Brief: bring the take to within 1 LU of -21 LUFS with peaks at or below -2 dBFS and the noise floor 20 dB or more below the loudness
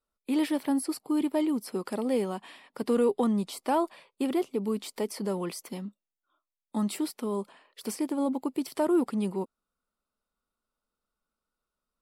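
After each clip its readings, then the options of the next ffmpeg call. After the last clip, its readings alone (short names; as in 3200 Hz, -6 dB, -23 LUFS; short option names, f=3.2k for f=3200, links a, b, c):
loudness -30.0 LUFS; peak -15.5 dBFS; loudness target -21.0 LUFS
-> -af "volume=9dB"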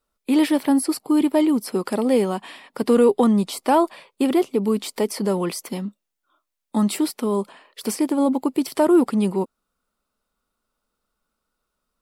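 loudness -21.0 LUFS; peak -6.5 dBFS; noise floor -80 dBFS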